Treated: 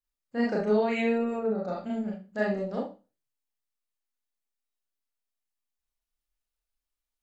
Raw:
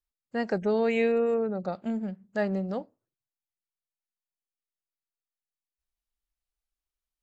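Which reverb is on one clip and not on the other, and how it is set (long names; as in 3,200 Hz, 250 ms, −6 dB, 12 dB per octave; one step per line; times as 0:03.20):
four-comb reverb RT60 0.31 s, combs from 26 ms, DRR −4 dB
level −4.5 dB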